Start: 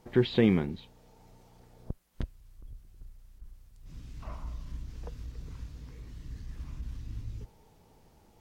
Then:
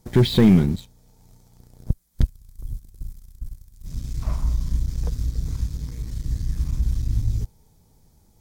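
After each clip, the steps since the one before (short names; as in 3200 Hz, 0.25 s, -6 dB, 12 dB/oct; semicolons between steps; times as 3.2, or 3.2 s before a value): notch 2800 Hz, Q 7.2; sample leveller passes 2; tone controls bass +11 dB, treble +13 dB; gain -1.5 dB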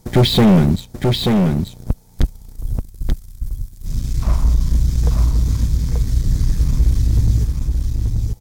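hard clip -16.5 dBFS, distortion -9 dB; echo 0.884 s -4 dB; gain +8.5 dB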